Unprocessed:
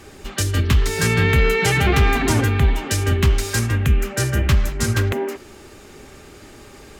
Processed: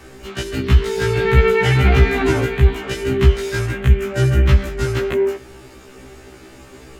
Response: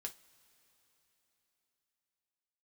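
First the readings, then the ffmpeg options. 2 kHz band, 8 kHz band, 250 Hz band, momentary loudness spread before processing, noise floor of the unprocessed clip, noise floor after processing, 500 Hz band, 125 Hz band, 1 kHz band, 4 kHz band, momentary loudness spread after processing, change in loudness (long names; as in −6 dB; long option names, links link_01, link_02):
−0.5 dB, −9.0 dB, +1.0 dB, 6 LU, −43 dBFS, −42 dBFS, +5.5 dB, +1.5 dB, 0.0 dB, −2.0 dB, 9 LU, +2.0 dB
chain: -filter_complex "[0:a]acrossover=split=4500[link_01][link_02];[link_02]acompressor=threshold=-37dB:ratio=4:attack=1:release=60[link_03];[link_01][link_03]amix=inputs=2:normalize=0,asplit=2[link_04][link_05];[1:a]atrim=start_sample=2205,lowpass=3600[link_06];[link_05][link_06]afir=irnorm=-1:irlink=0,volume=-4dB[link_07];[link_04][link_07]amix=inputs=2:normalize=0,afftfilt=real='re*1.73*eq(mod(b,3),0)':imag='im*1.73*eq(mod(b,3),0)':win_size=2048:overlap=0.75,volume=1.5dB"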